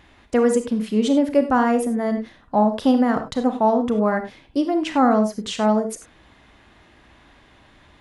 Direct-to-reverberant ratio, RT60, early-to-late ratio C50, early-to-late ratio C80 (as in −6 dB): 7.0 dB, non-exponential decay, 9.0 dB, 13.5 dB